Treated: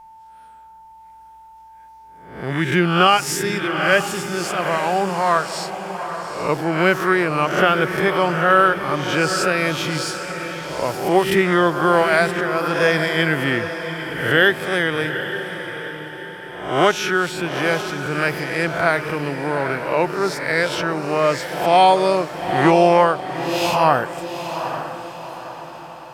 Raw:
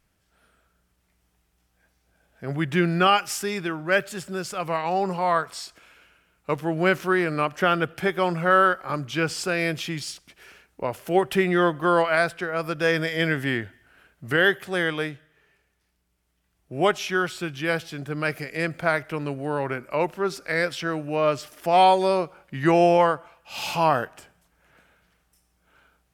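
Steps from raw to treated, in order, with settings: spectral swells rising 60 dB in 0.62 s; diffused feedback echo 0.831 s, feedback 45%, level -9 dB; whine 890 Hz -45 dBFS; gain +3.5 dB

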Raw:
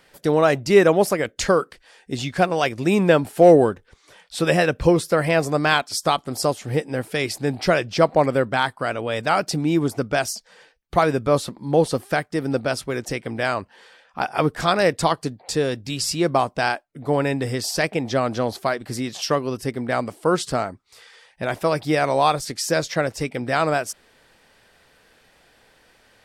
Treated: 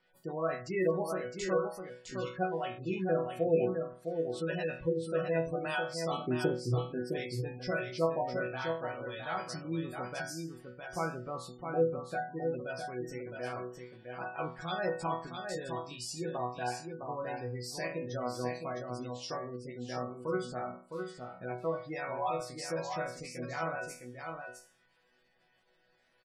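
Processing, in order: 6.11–6.75 resonant low shelf 520 Hz +10.5 dB, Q 3; resonator bank B2 sus4, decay 0.42 s; spectral gate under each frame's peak -20 dB strong; echo 0.66 s -6 dB

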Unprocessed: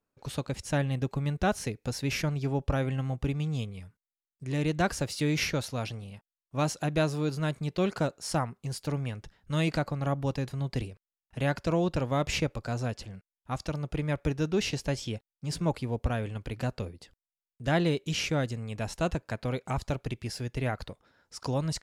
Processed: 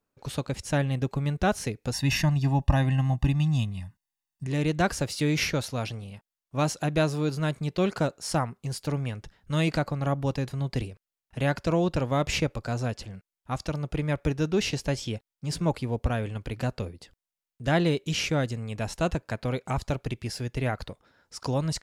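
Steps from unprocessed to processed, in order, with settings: 1.93–4.47 comb 1.1 ms, depth 93%; gain +2.5 dB

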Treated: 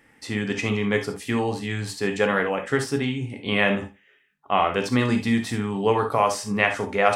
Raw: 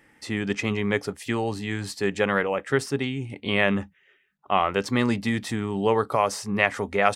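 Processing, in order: thinning echo 84 ms, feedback 18%, high-pass 160 Hz, level -20.5 dB; non-linear reverb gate 90 ms flat, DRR 4.5 dB

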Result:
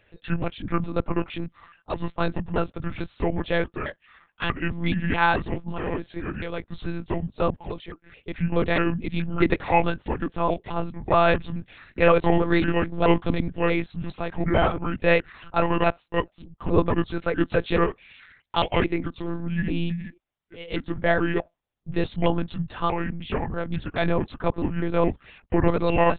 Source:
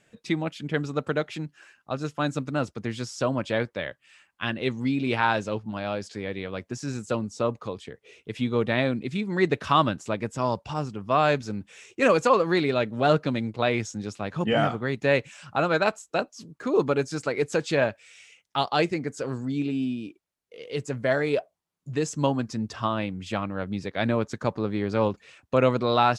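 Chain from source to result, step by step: trilling pitch shifter -6 st, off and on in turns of 0.214 s; monotone LPC vocoder at 8 kHz 170 Hz; gain +3 dB

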